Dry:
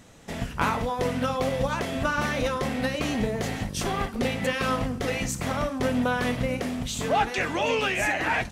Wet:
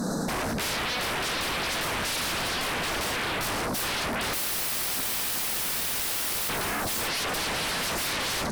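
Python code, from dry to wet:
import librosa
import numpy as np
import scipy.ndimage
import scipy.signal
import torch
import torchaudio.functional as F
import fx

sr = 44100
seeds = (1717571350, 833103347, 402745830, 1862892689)

y = fx.spec_flatten(x, sr, power=0.12, at=(4.33, 6.48), fade=0.02)
y = 10.0 ** (-26.0 / 20.0) * np.tanh(y / 10.0 ** (-26.0 / 20.0))
y = scipy.signal.sosfilt(scipy.signal.ellip(3, 1.0, 40, [1600.0, 4100.0], 'bandstop', fs=sr, output='sos'), y)
y = fx.low_shelf_res(y, sr, hz=140.0, db=-9.5, q=3.0)
y = y + 10.0 ** (-17.5 / 20.0) * np.pad(y, (int(586 * sr / 1000.0), 0))[:len(y)]
y = fx.fold_sine(y, sr, drive_db=15, ceiling_db=-24.0)
y = fx.peak_eq(y, sr, hz=6900.0, db=-4.0, octaves=0.38)
y = fx.env_flatten(y, sr, amount_pct=100)
y = y * 10.0 ** (-2.5 / 20.0)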